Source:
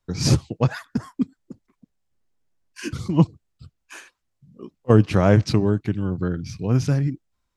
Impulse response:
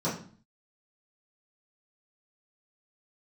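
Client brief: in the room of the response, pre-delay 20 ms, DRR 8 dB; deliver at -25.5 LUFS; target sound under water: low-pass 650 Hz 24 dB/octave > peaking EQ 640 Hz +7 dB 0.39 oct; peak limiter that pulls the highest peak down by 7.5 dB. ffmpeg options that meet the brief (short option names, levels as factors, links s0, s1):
-filter_complex "[0:a]alimiter=limit=0.335:level=0:latency=1,asplit=2[s0][s1];[1:a]atrim=start_sample=2205,adelay=20[s2];[s1][s2]afir=irnorm=-1:irlink=0,volume=0.141[s3];[s0][s3]amix=inputs=2:normalize=0,lowpass=f=650:w=0.5412,lowpass=f=650:w=1.3066,equalizer=f=640:t=o:w=0.39:g=7,volume=0.596"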